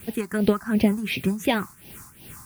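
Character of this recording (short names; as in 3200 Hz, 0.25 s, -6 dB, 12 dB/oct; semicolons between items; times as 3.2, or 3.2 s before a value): a quantiser's noise floor 8-bit, dither triangular; tremolo triangle 2.7 Hz, depth 80%; phasing stages 4, 2.8 Hz, lowest notch 490–1300 Hz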